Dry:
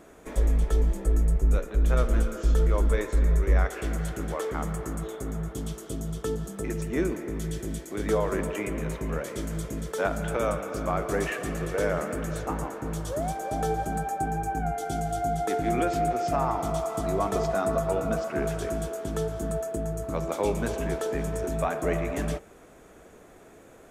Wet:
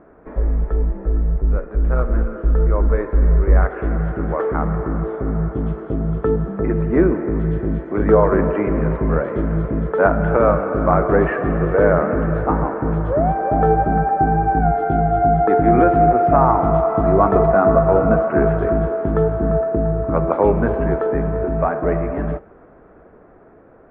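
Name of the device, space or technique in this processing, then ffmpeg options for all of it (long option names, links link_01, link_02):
action camera in a waterproof case: -af "lowpass=frequency=1600:width=0.5412,lowpass=frequency=1600:width=1.3066,dynaudnorm=framelen=680:gausssize=11:maxgain=9dB,volume=4dB" -ar 44100 -c:a aac -b:a 48k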